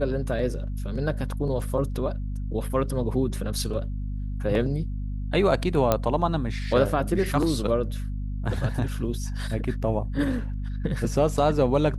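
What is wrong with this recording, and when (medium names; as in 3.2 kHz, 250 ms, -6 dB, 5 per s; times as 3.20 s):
hum 50 Hz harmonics 5 -30 dBFS
5.92 s: pop -7 dBFS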